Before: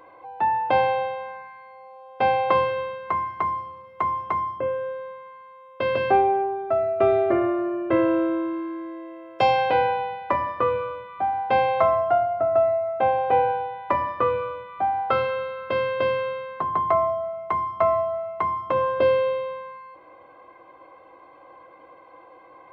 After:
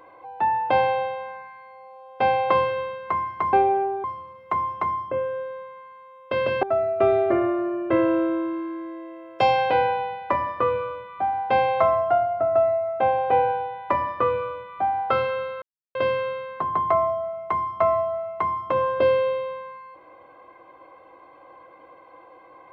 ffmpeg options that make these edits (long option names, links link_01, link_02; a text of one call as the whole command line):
ffmpeg -i in.wav -filter_complex "[0:a]asplit=6[link_01][link_02][link_03][link_04][link_05][link_06];[link_01]atrim=end=3.532[link_07];[link_02]atrim=start=6.118:end=6.632[link_08];[link_03]atrim=start=3.528:end=6.122[link_09];[link_04]atrim=start=6.628:end=15.62,asetpts=PTS-STARTPTS,afade=type=out:start_time=8.988:duration=0.004:curve=hsin[link_10];[link_05]atrim=start=15.62:end=15.95,asetpts=PTS-STARTPTS,volume=0[link_11];[link_06]atrim=start=15.95,asetpts=PTS-STARTPTS,afade=type=in:duration=0.004:curve=hsin[link_12];[link_07][link_08]acrossfade=duration=0.004:curve1=hsin:curve2=hsin[link_13];[link_13][link_09]acrossfade=duration=0.004:curve1=hsin:curve2=hsin[link_14];[link_10][link_11][link_12]concat=n=3:v=0:a=1[link_15];[link_14][link_15]acrossfade=duration=0.004:curve1=hsin:curve2=hsin" out.wav